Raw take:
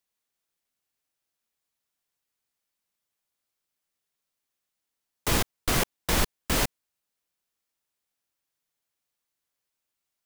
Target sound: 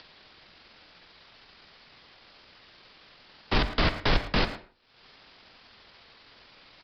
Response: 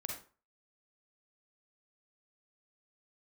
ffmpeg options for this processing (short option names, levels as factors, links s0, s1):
-filter_complex "[0:a]acompressor=mode=upward:threshold=0.0501:ratio=2.5,afreqshift=-56,asoftclip=type=hard:threshold=0.112,atempo=1.5,asplit=2[s0][s1];[1:a]atrim=start_sample=2205,adelay=46[s2];[s1][s2]afir=irnorm=-1:irlink=0,volume=0.251[s3];[s0][s3]amix=inputs=2:normalize=0,aresample=11025,aresample=44100,asplit=2[s4][s5];[s5]adelay=110,highpass=300,lowpass=3400,asoftclip=type=hard:threshold=0.0447,volume=0.224[s6];[s4][s6]amix=inputs=2:normalize=0,volume=1.5"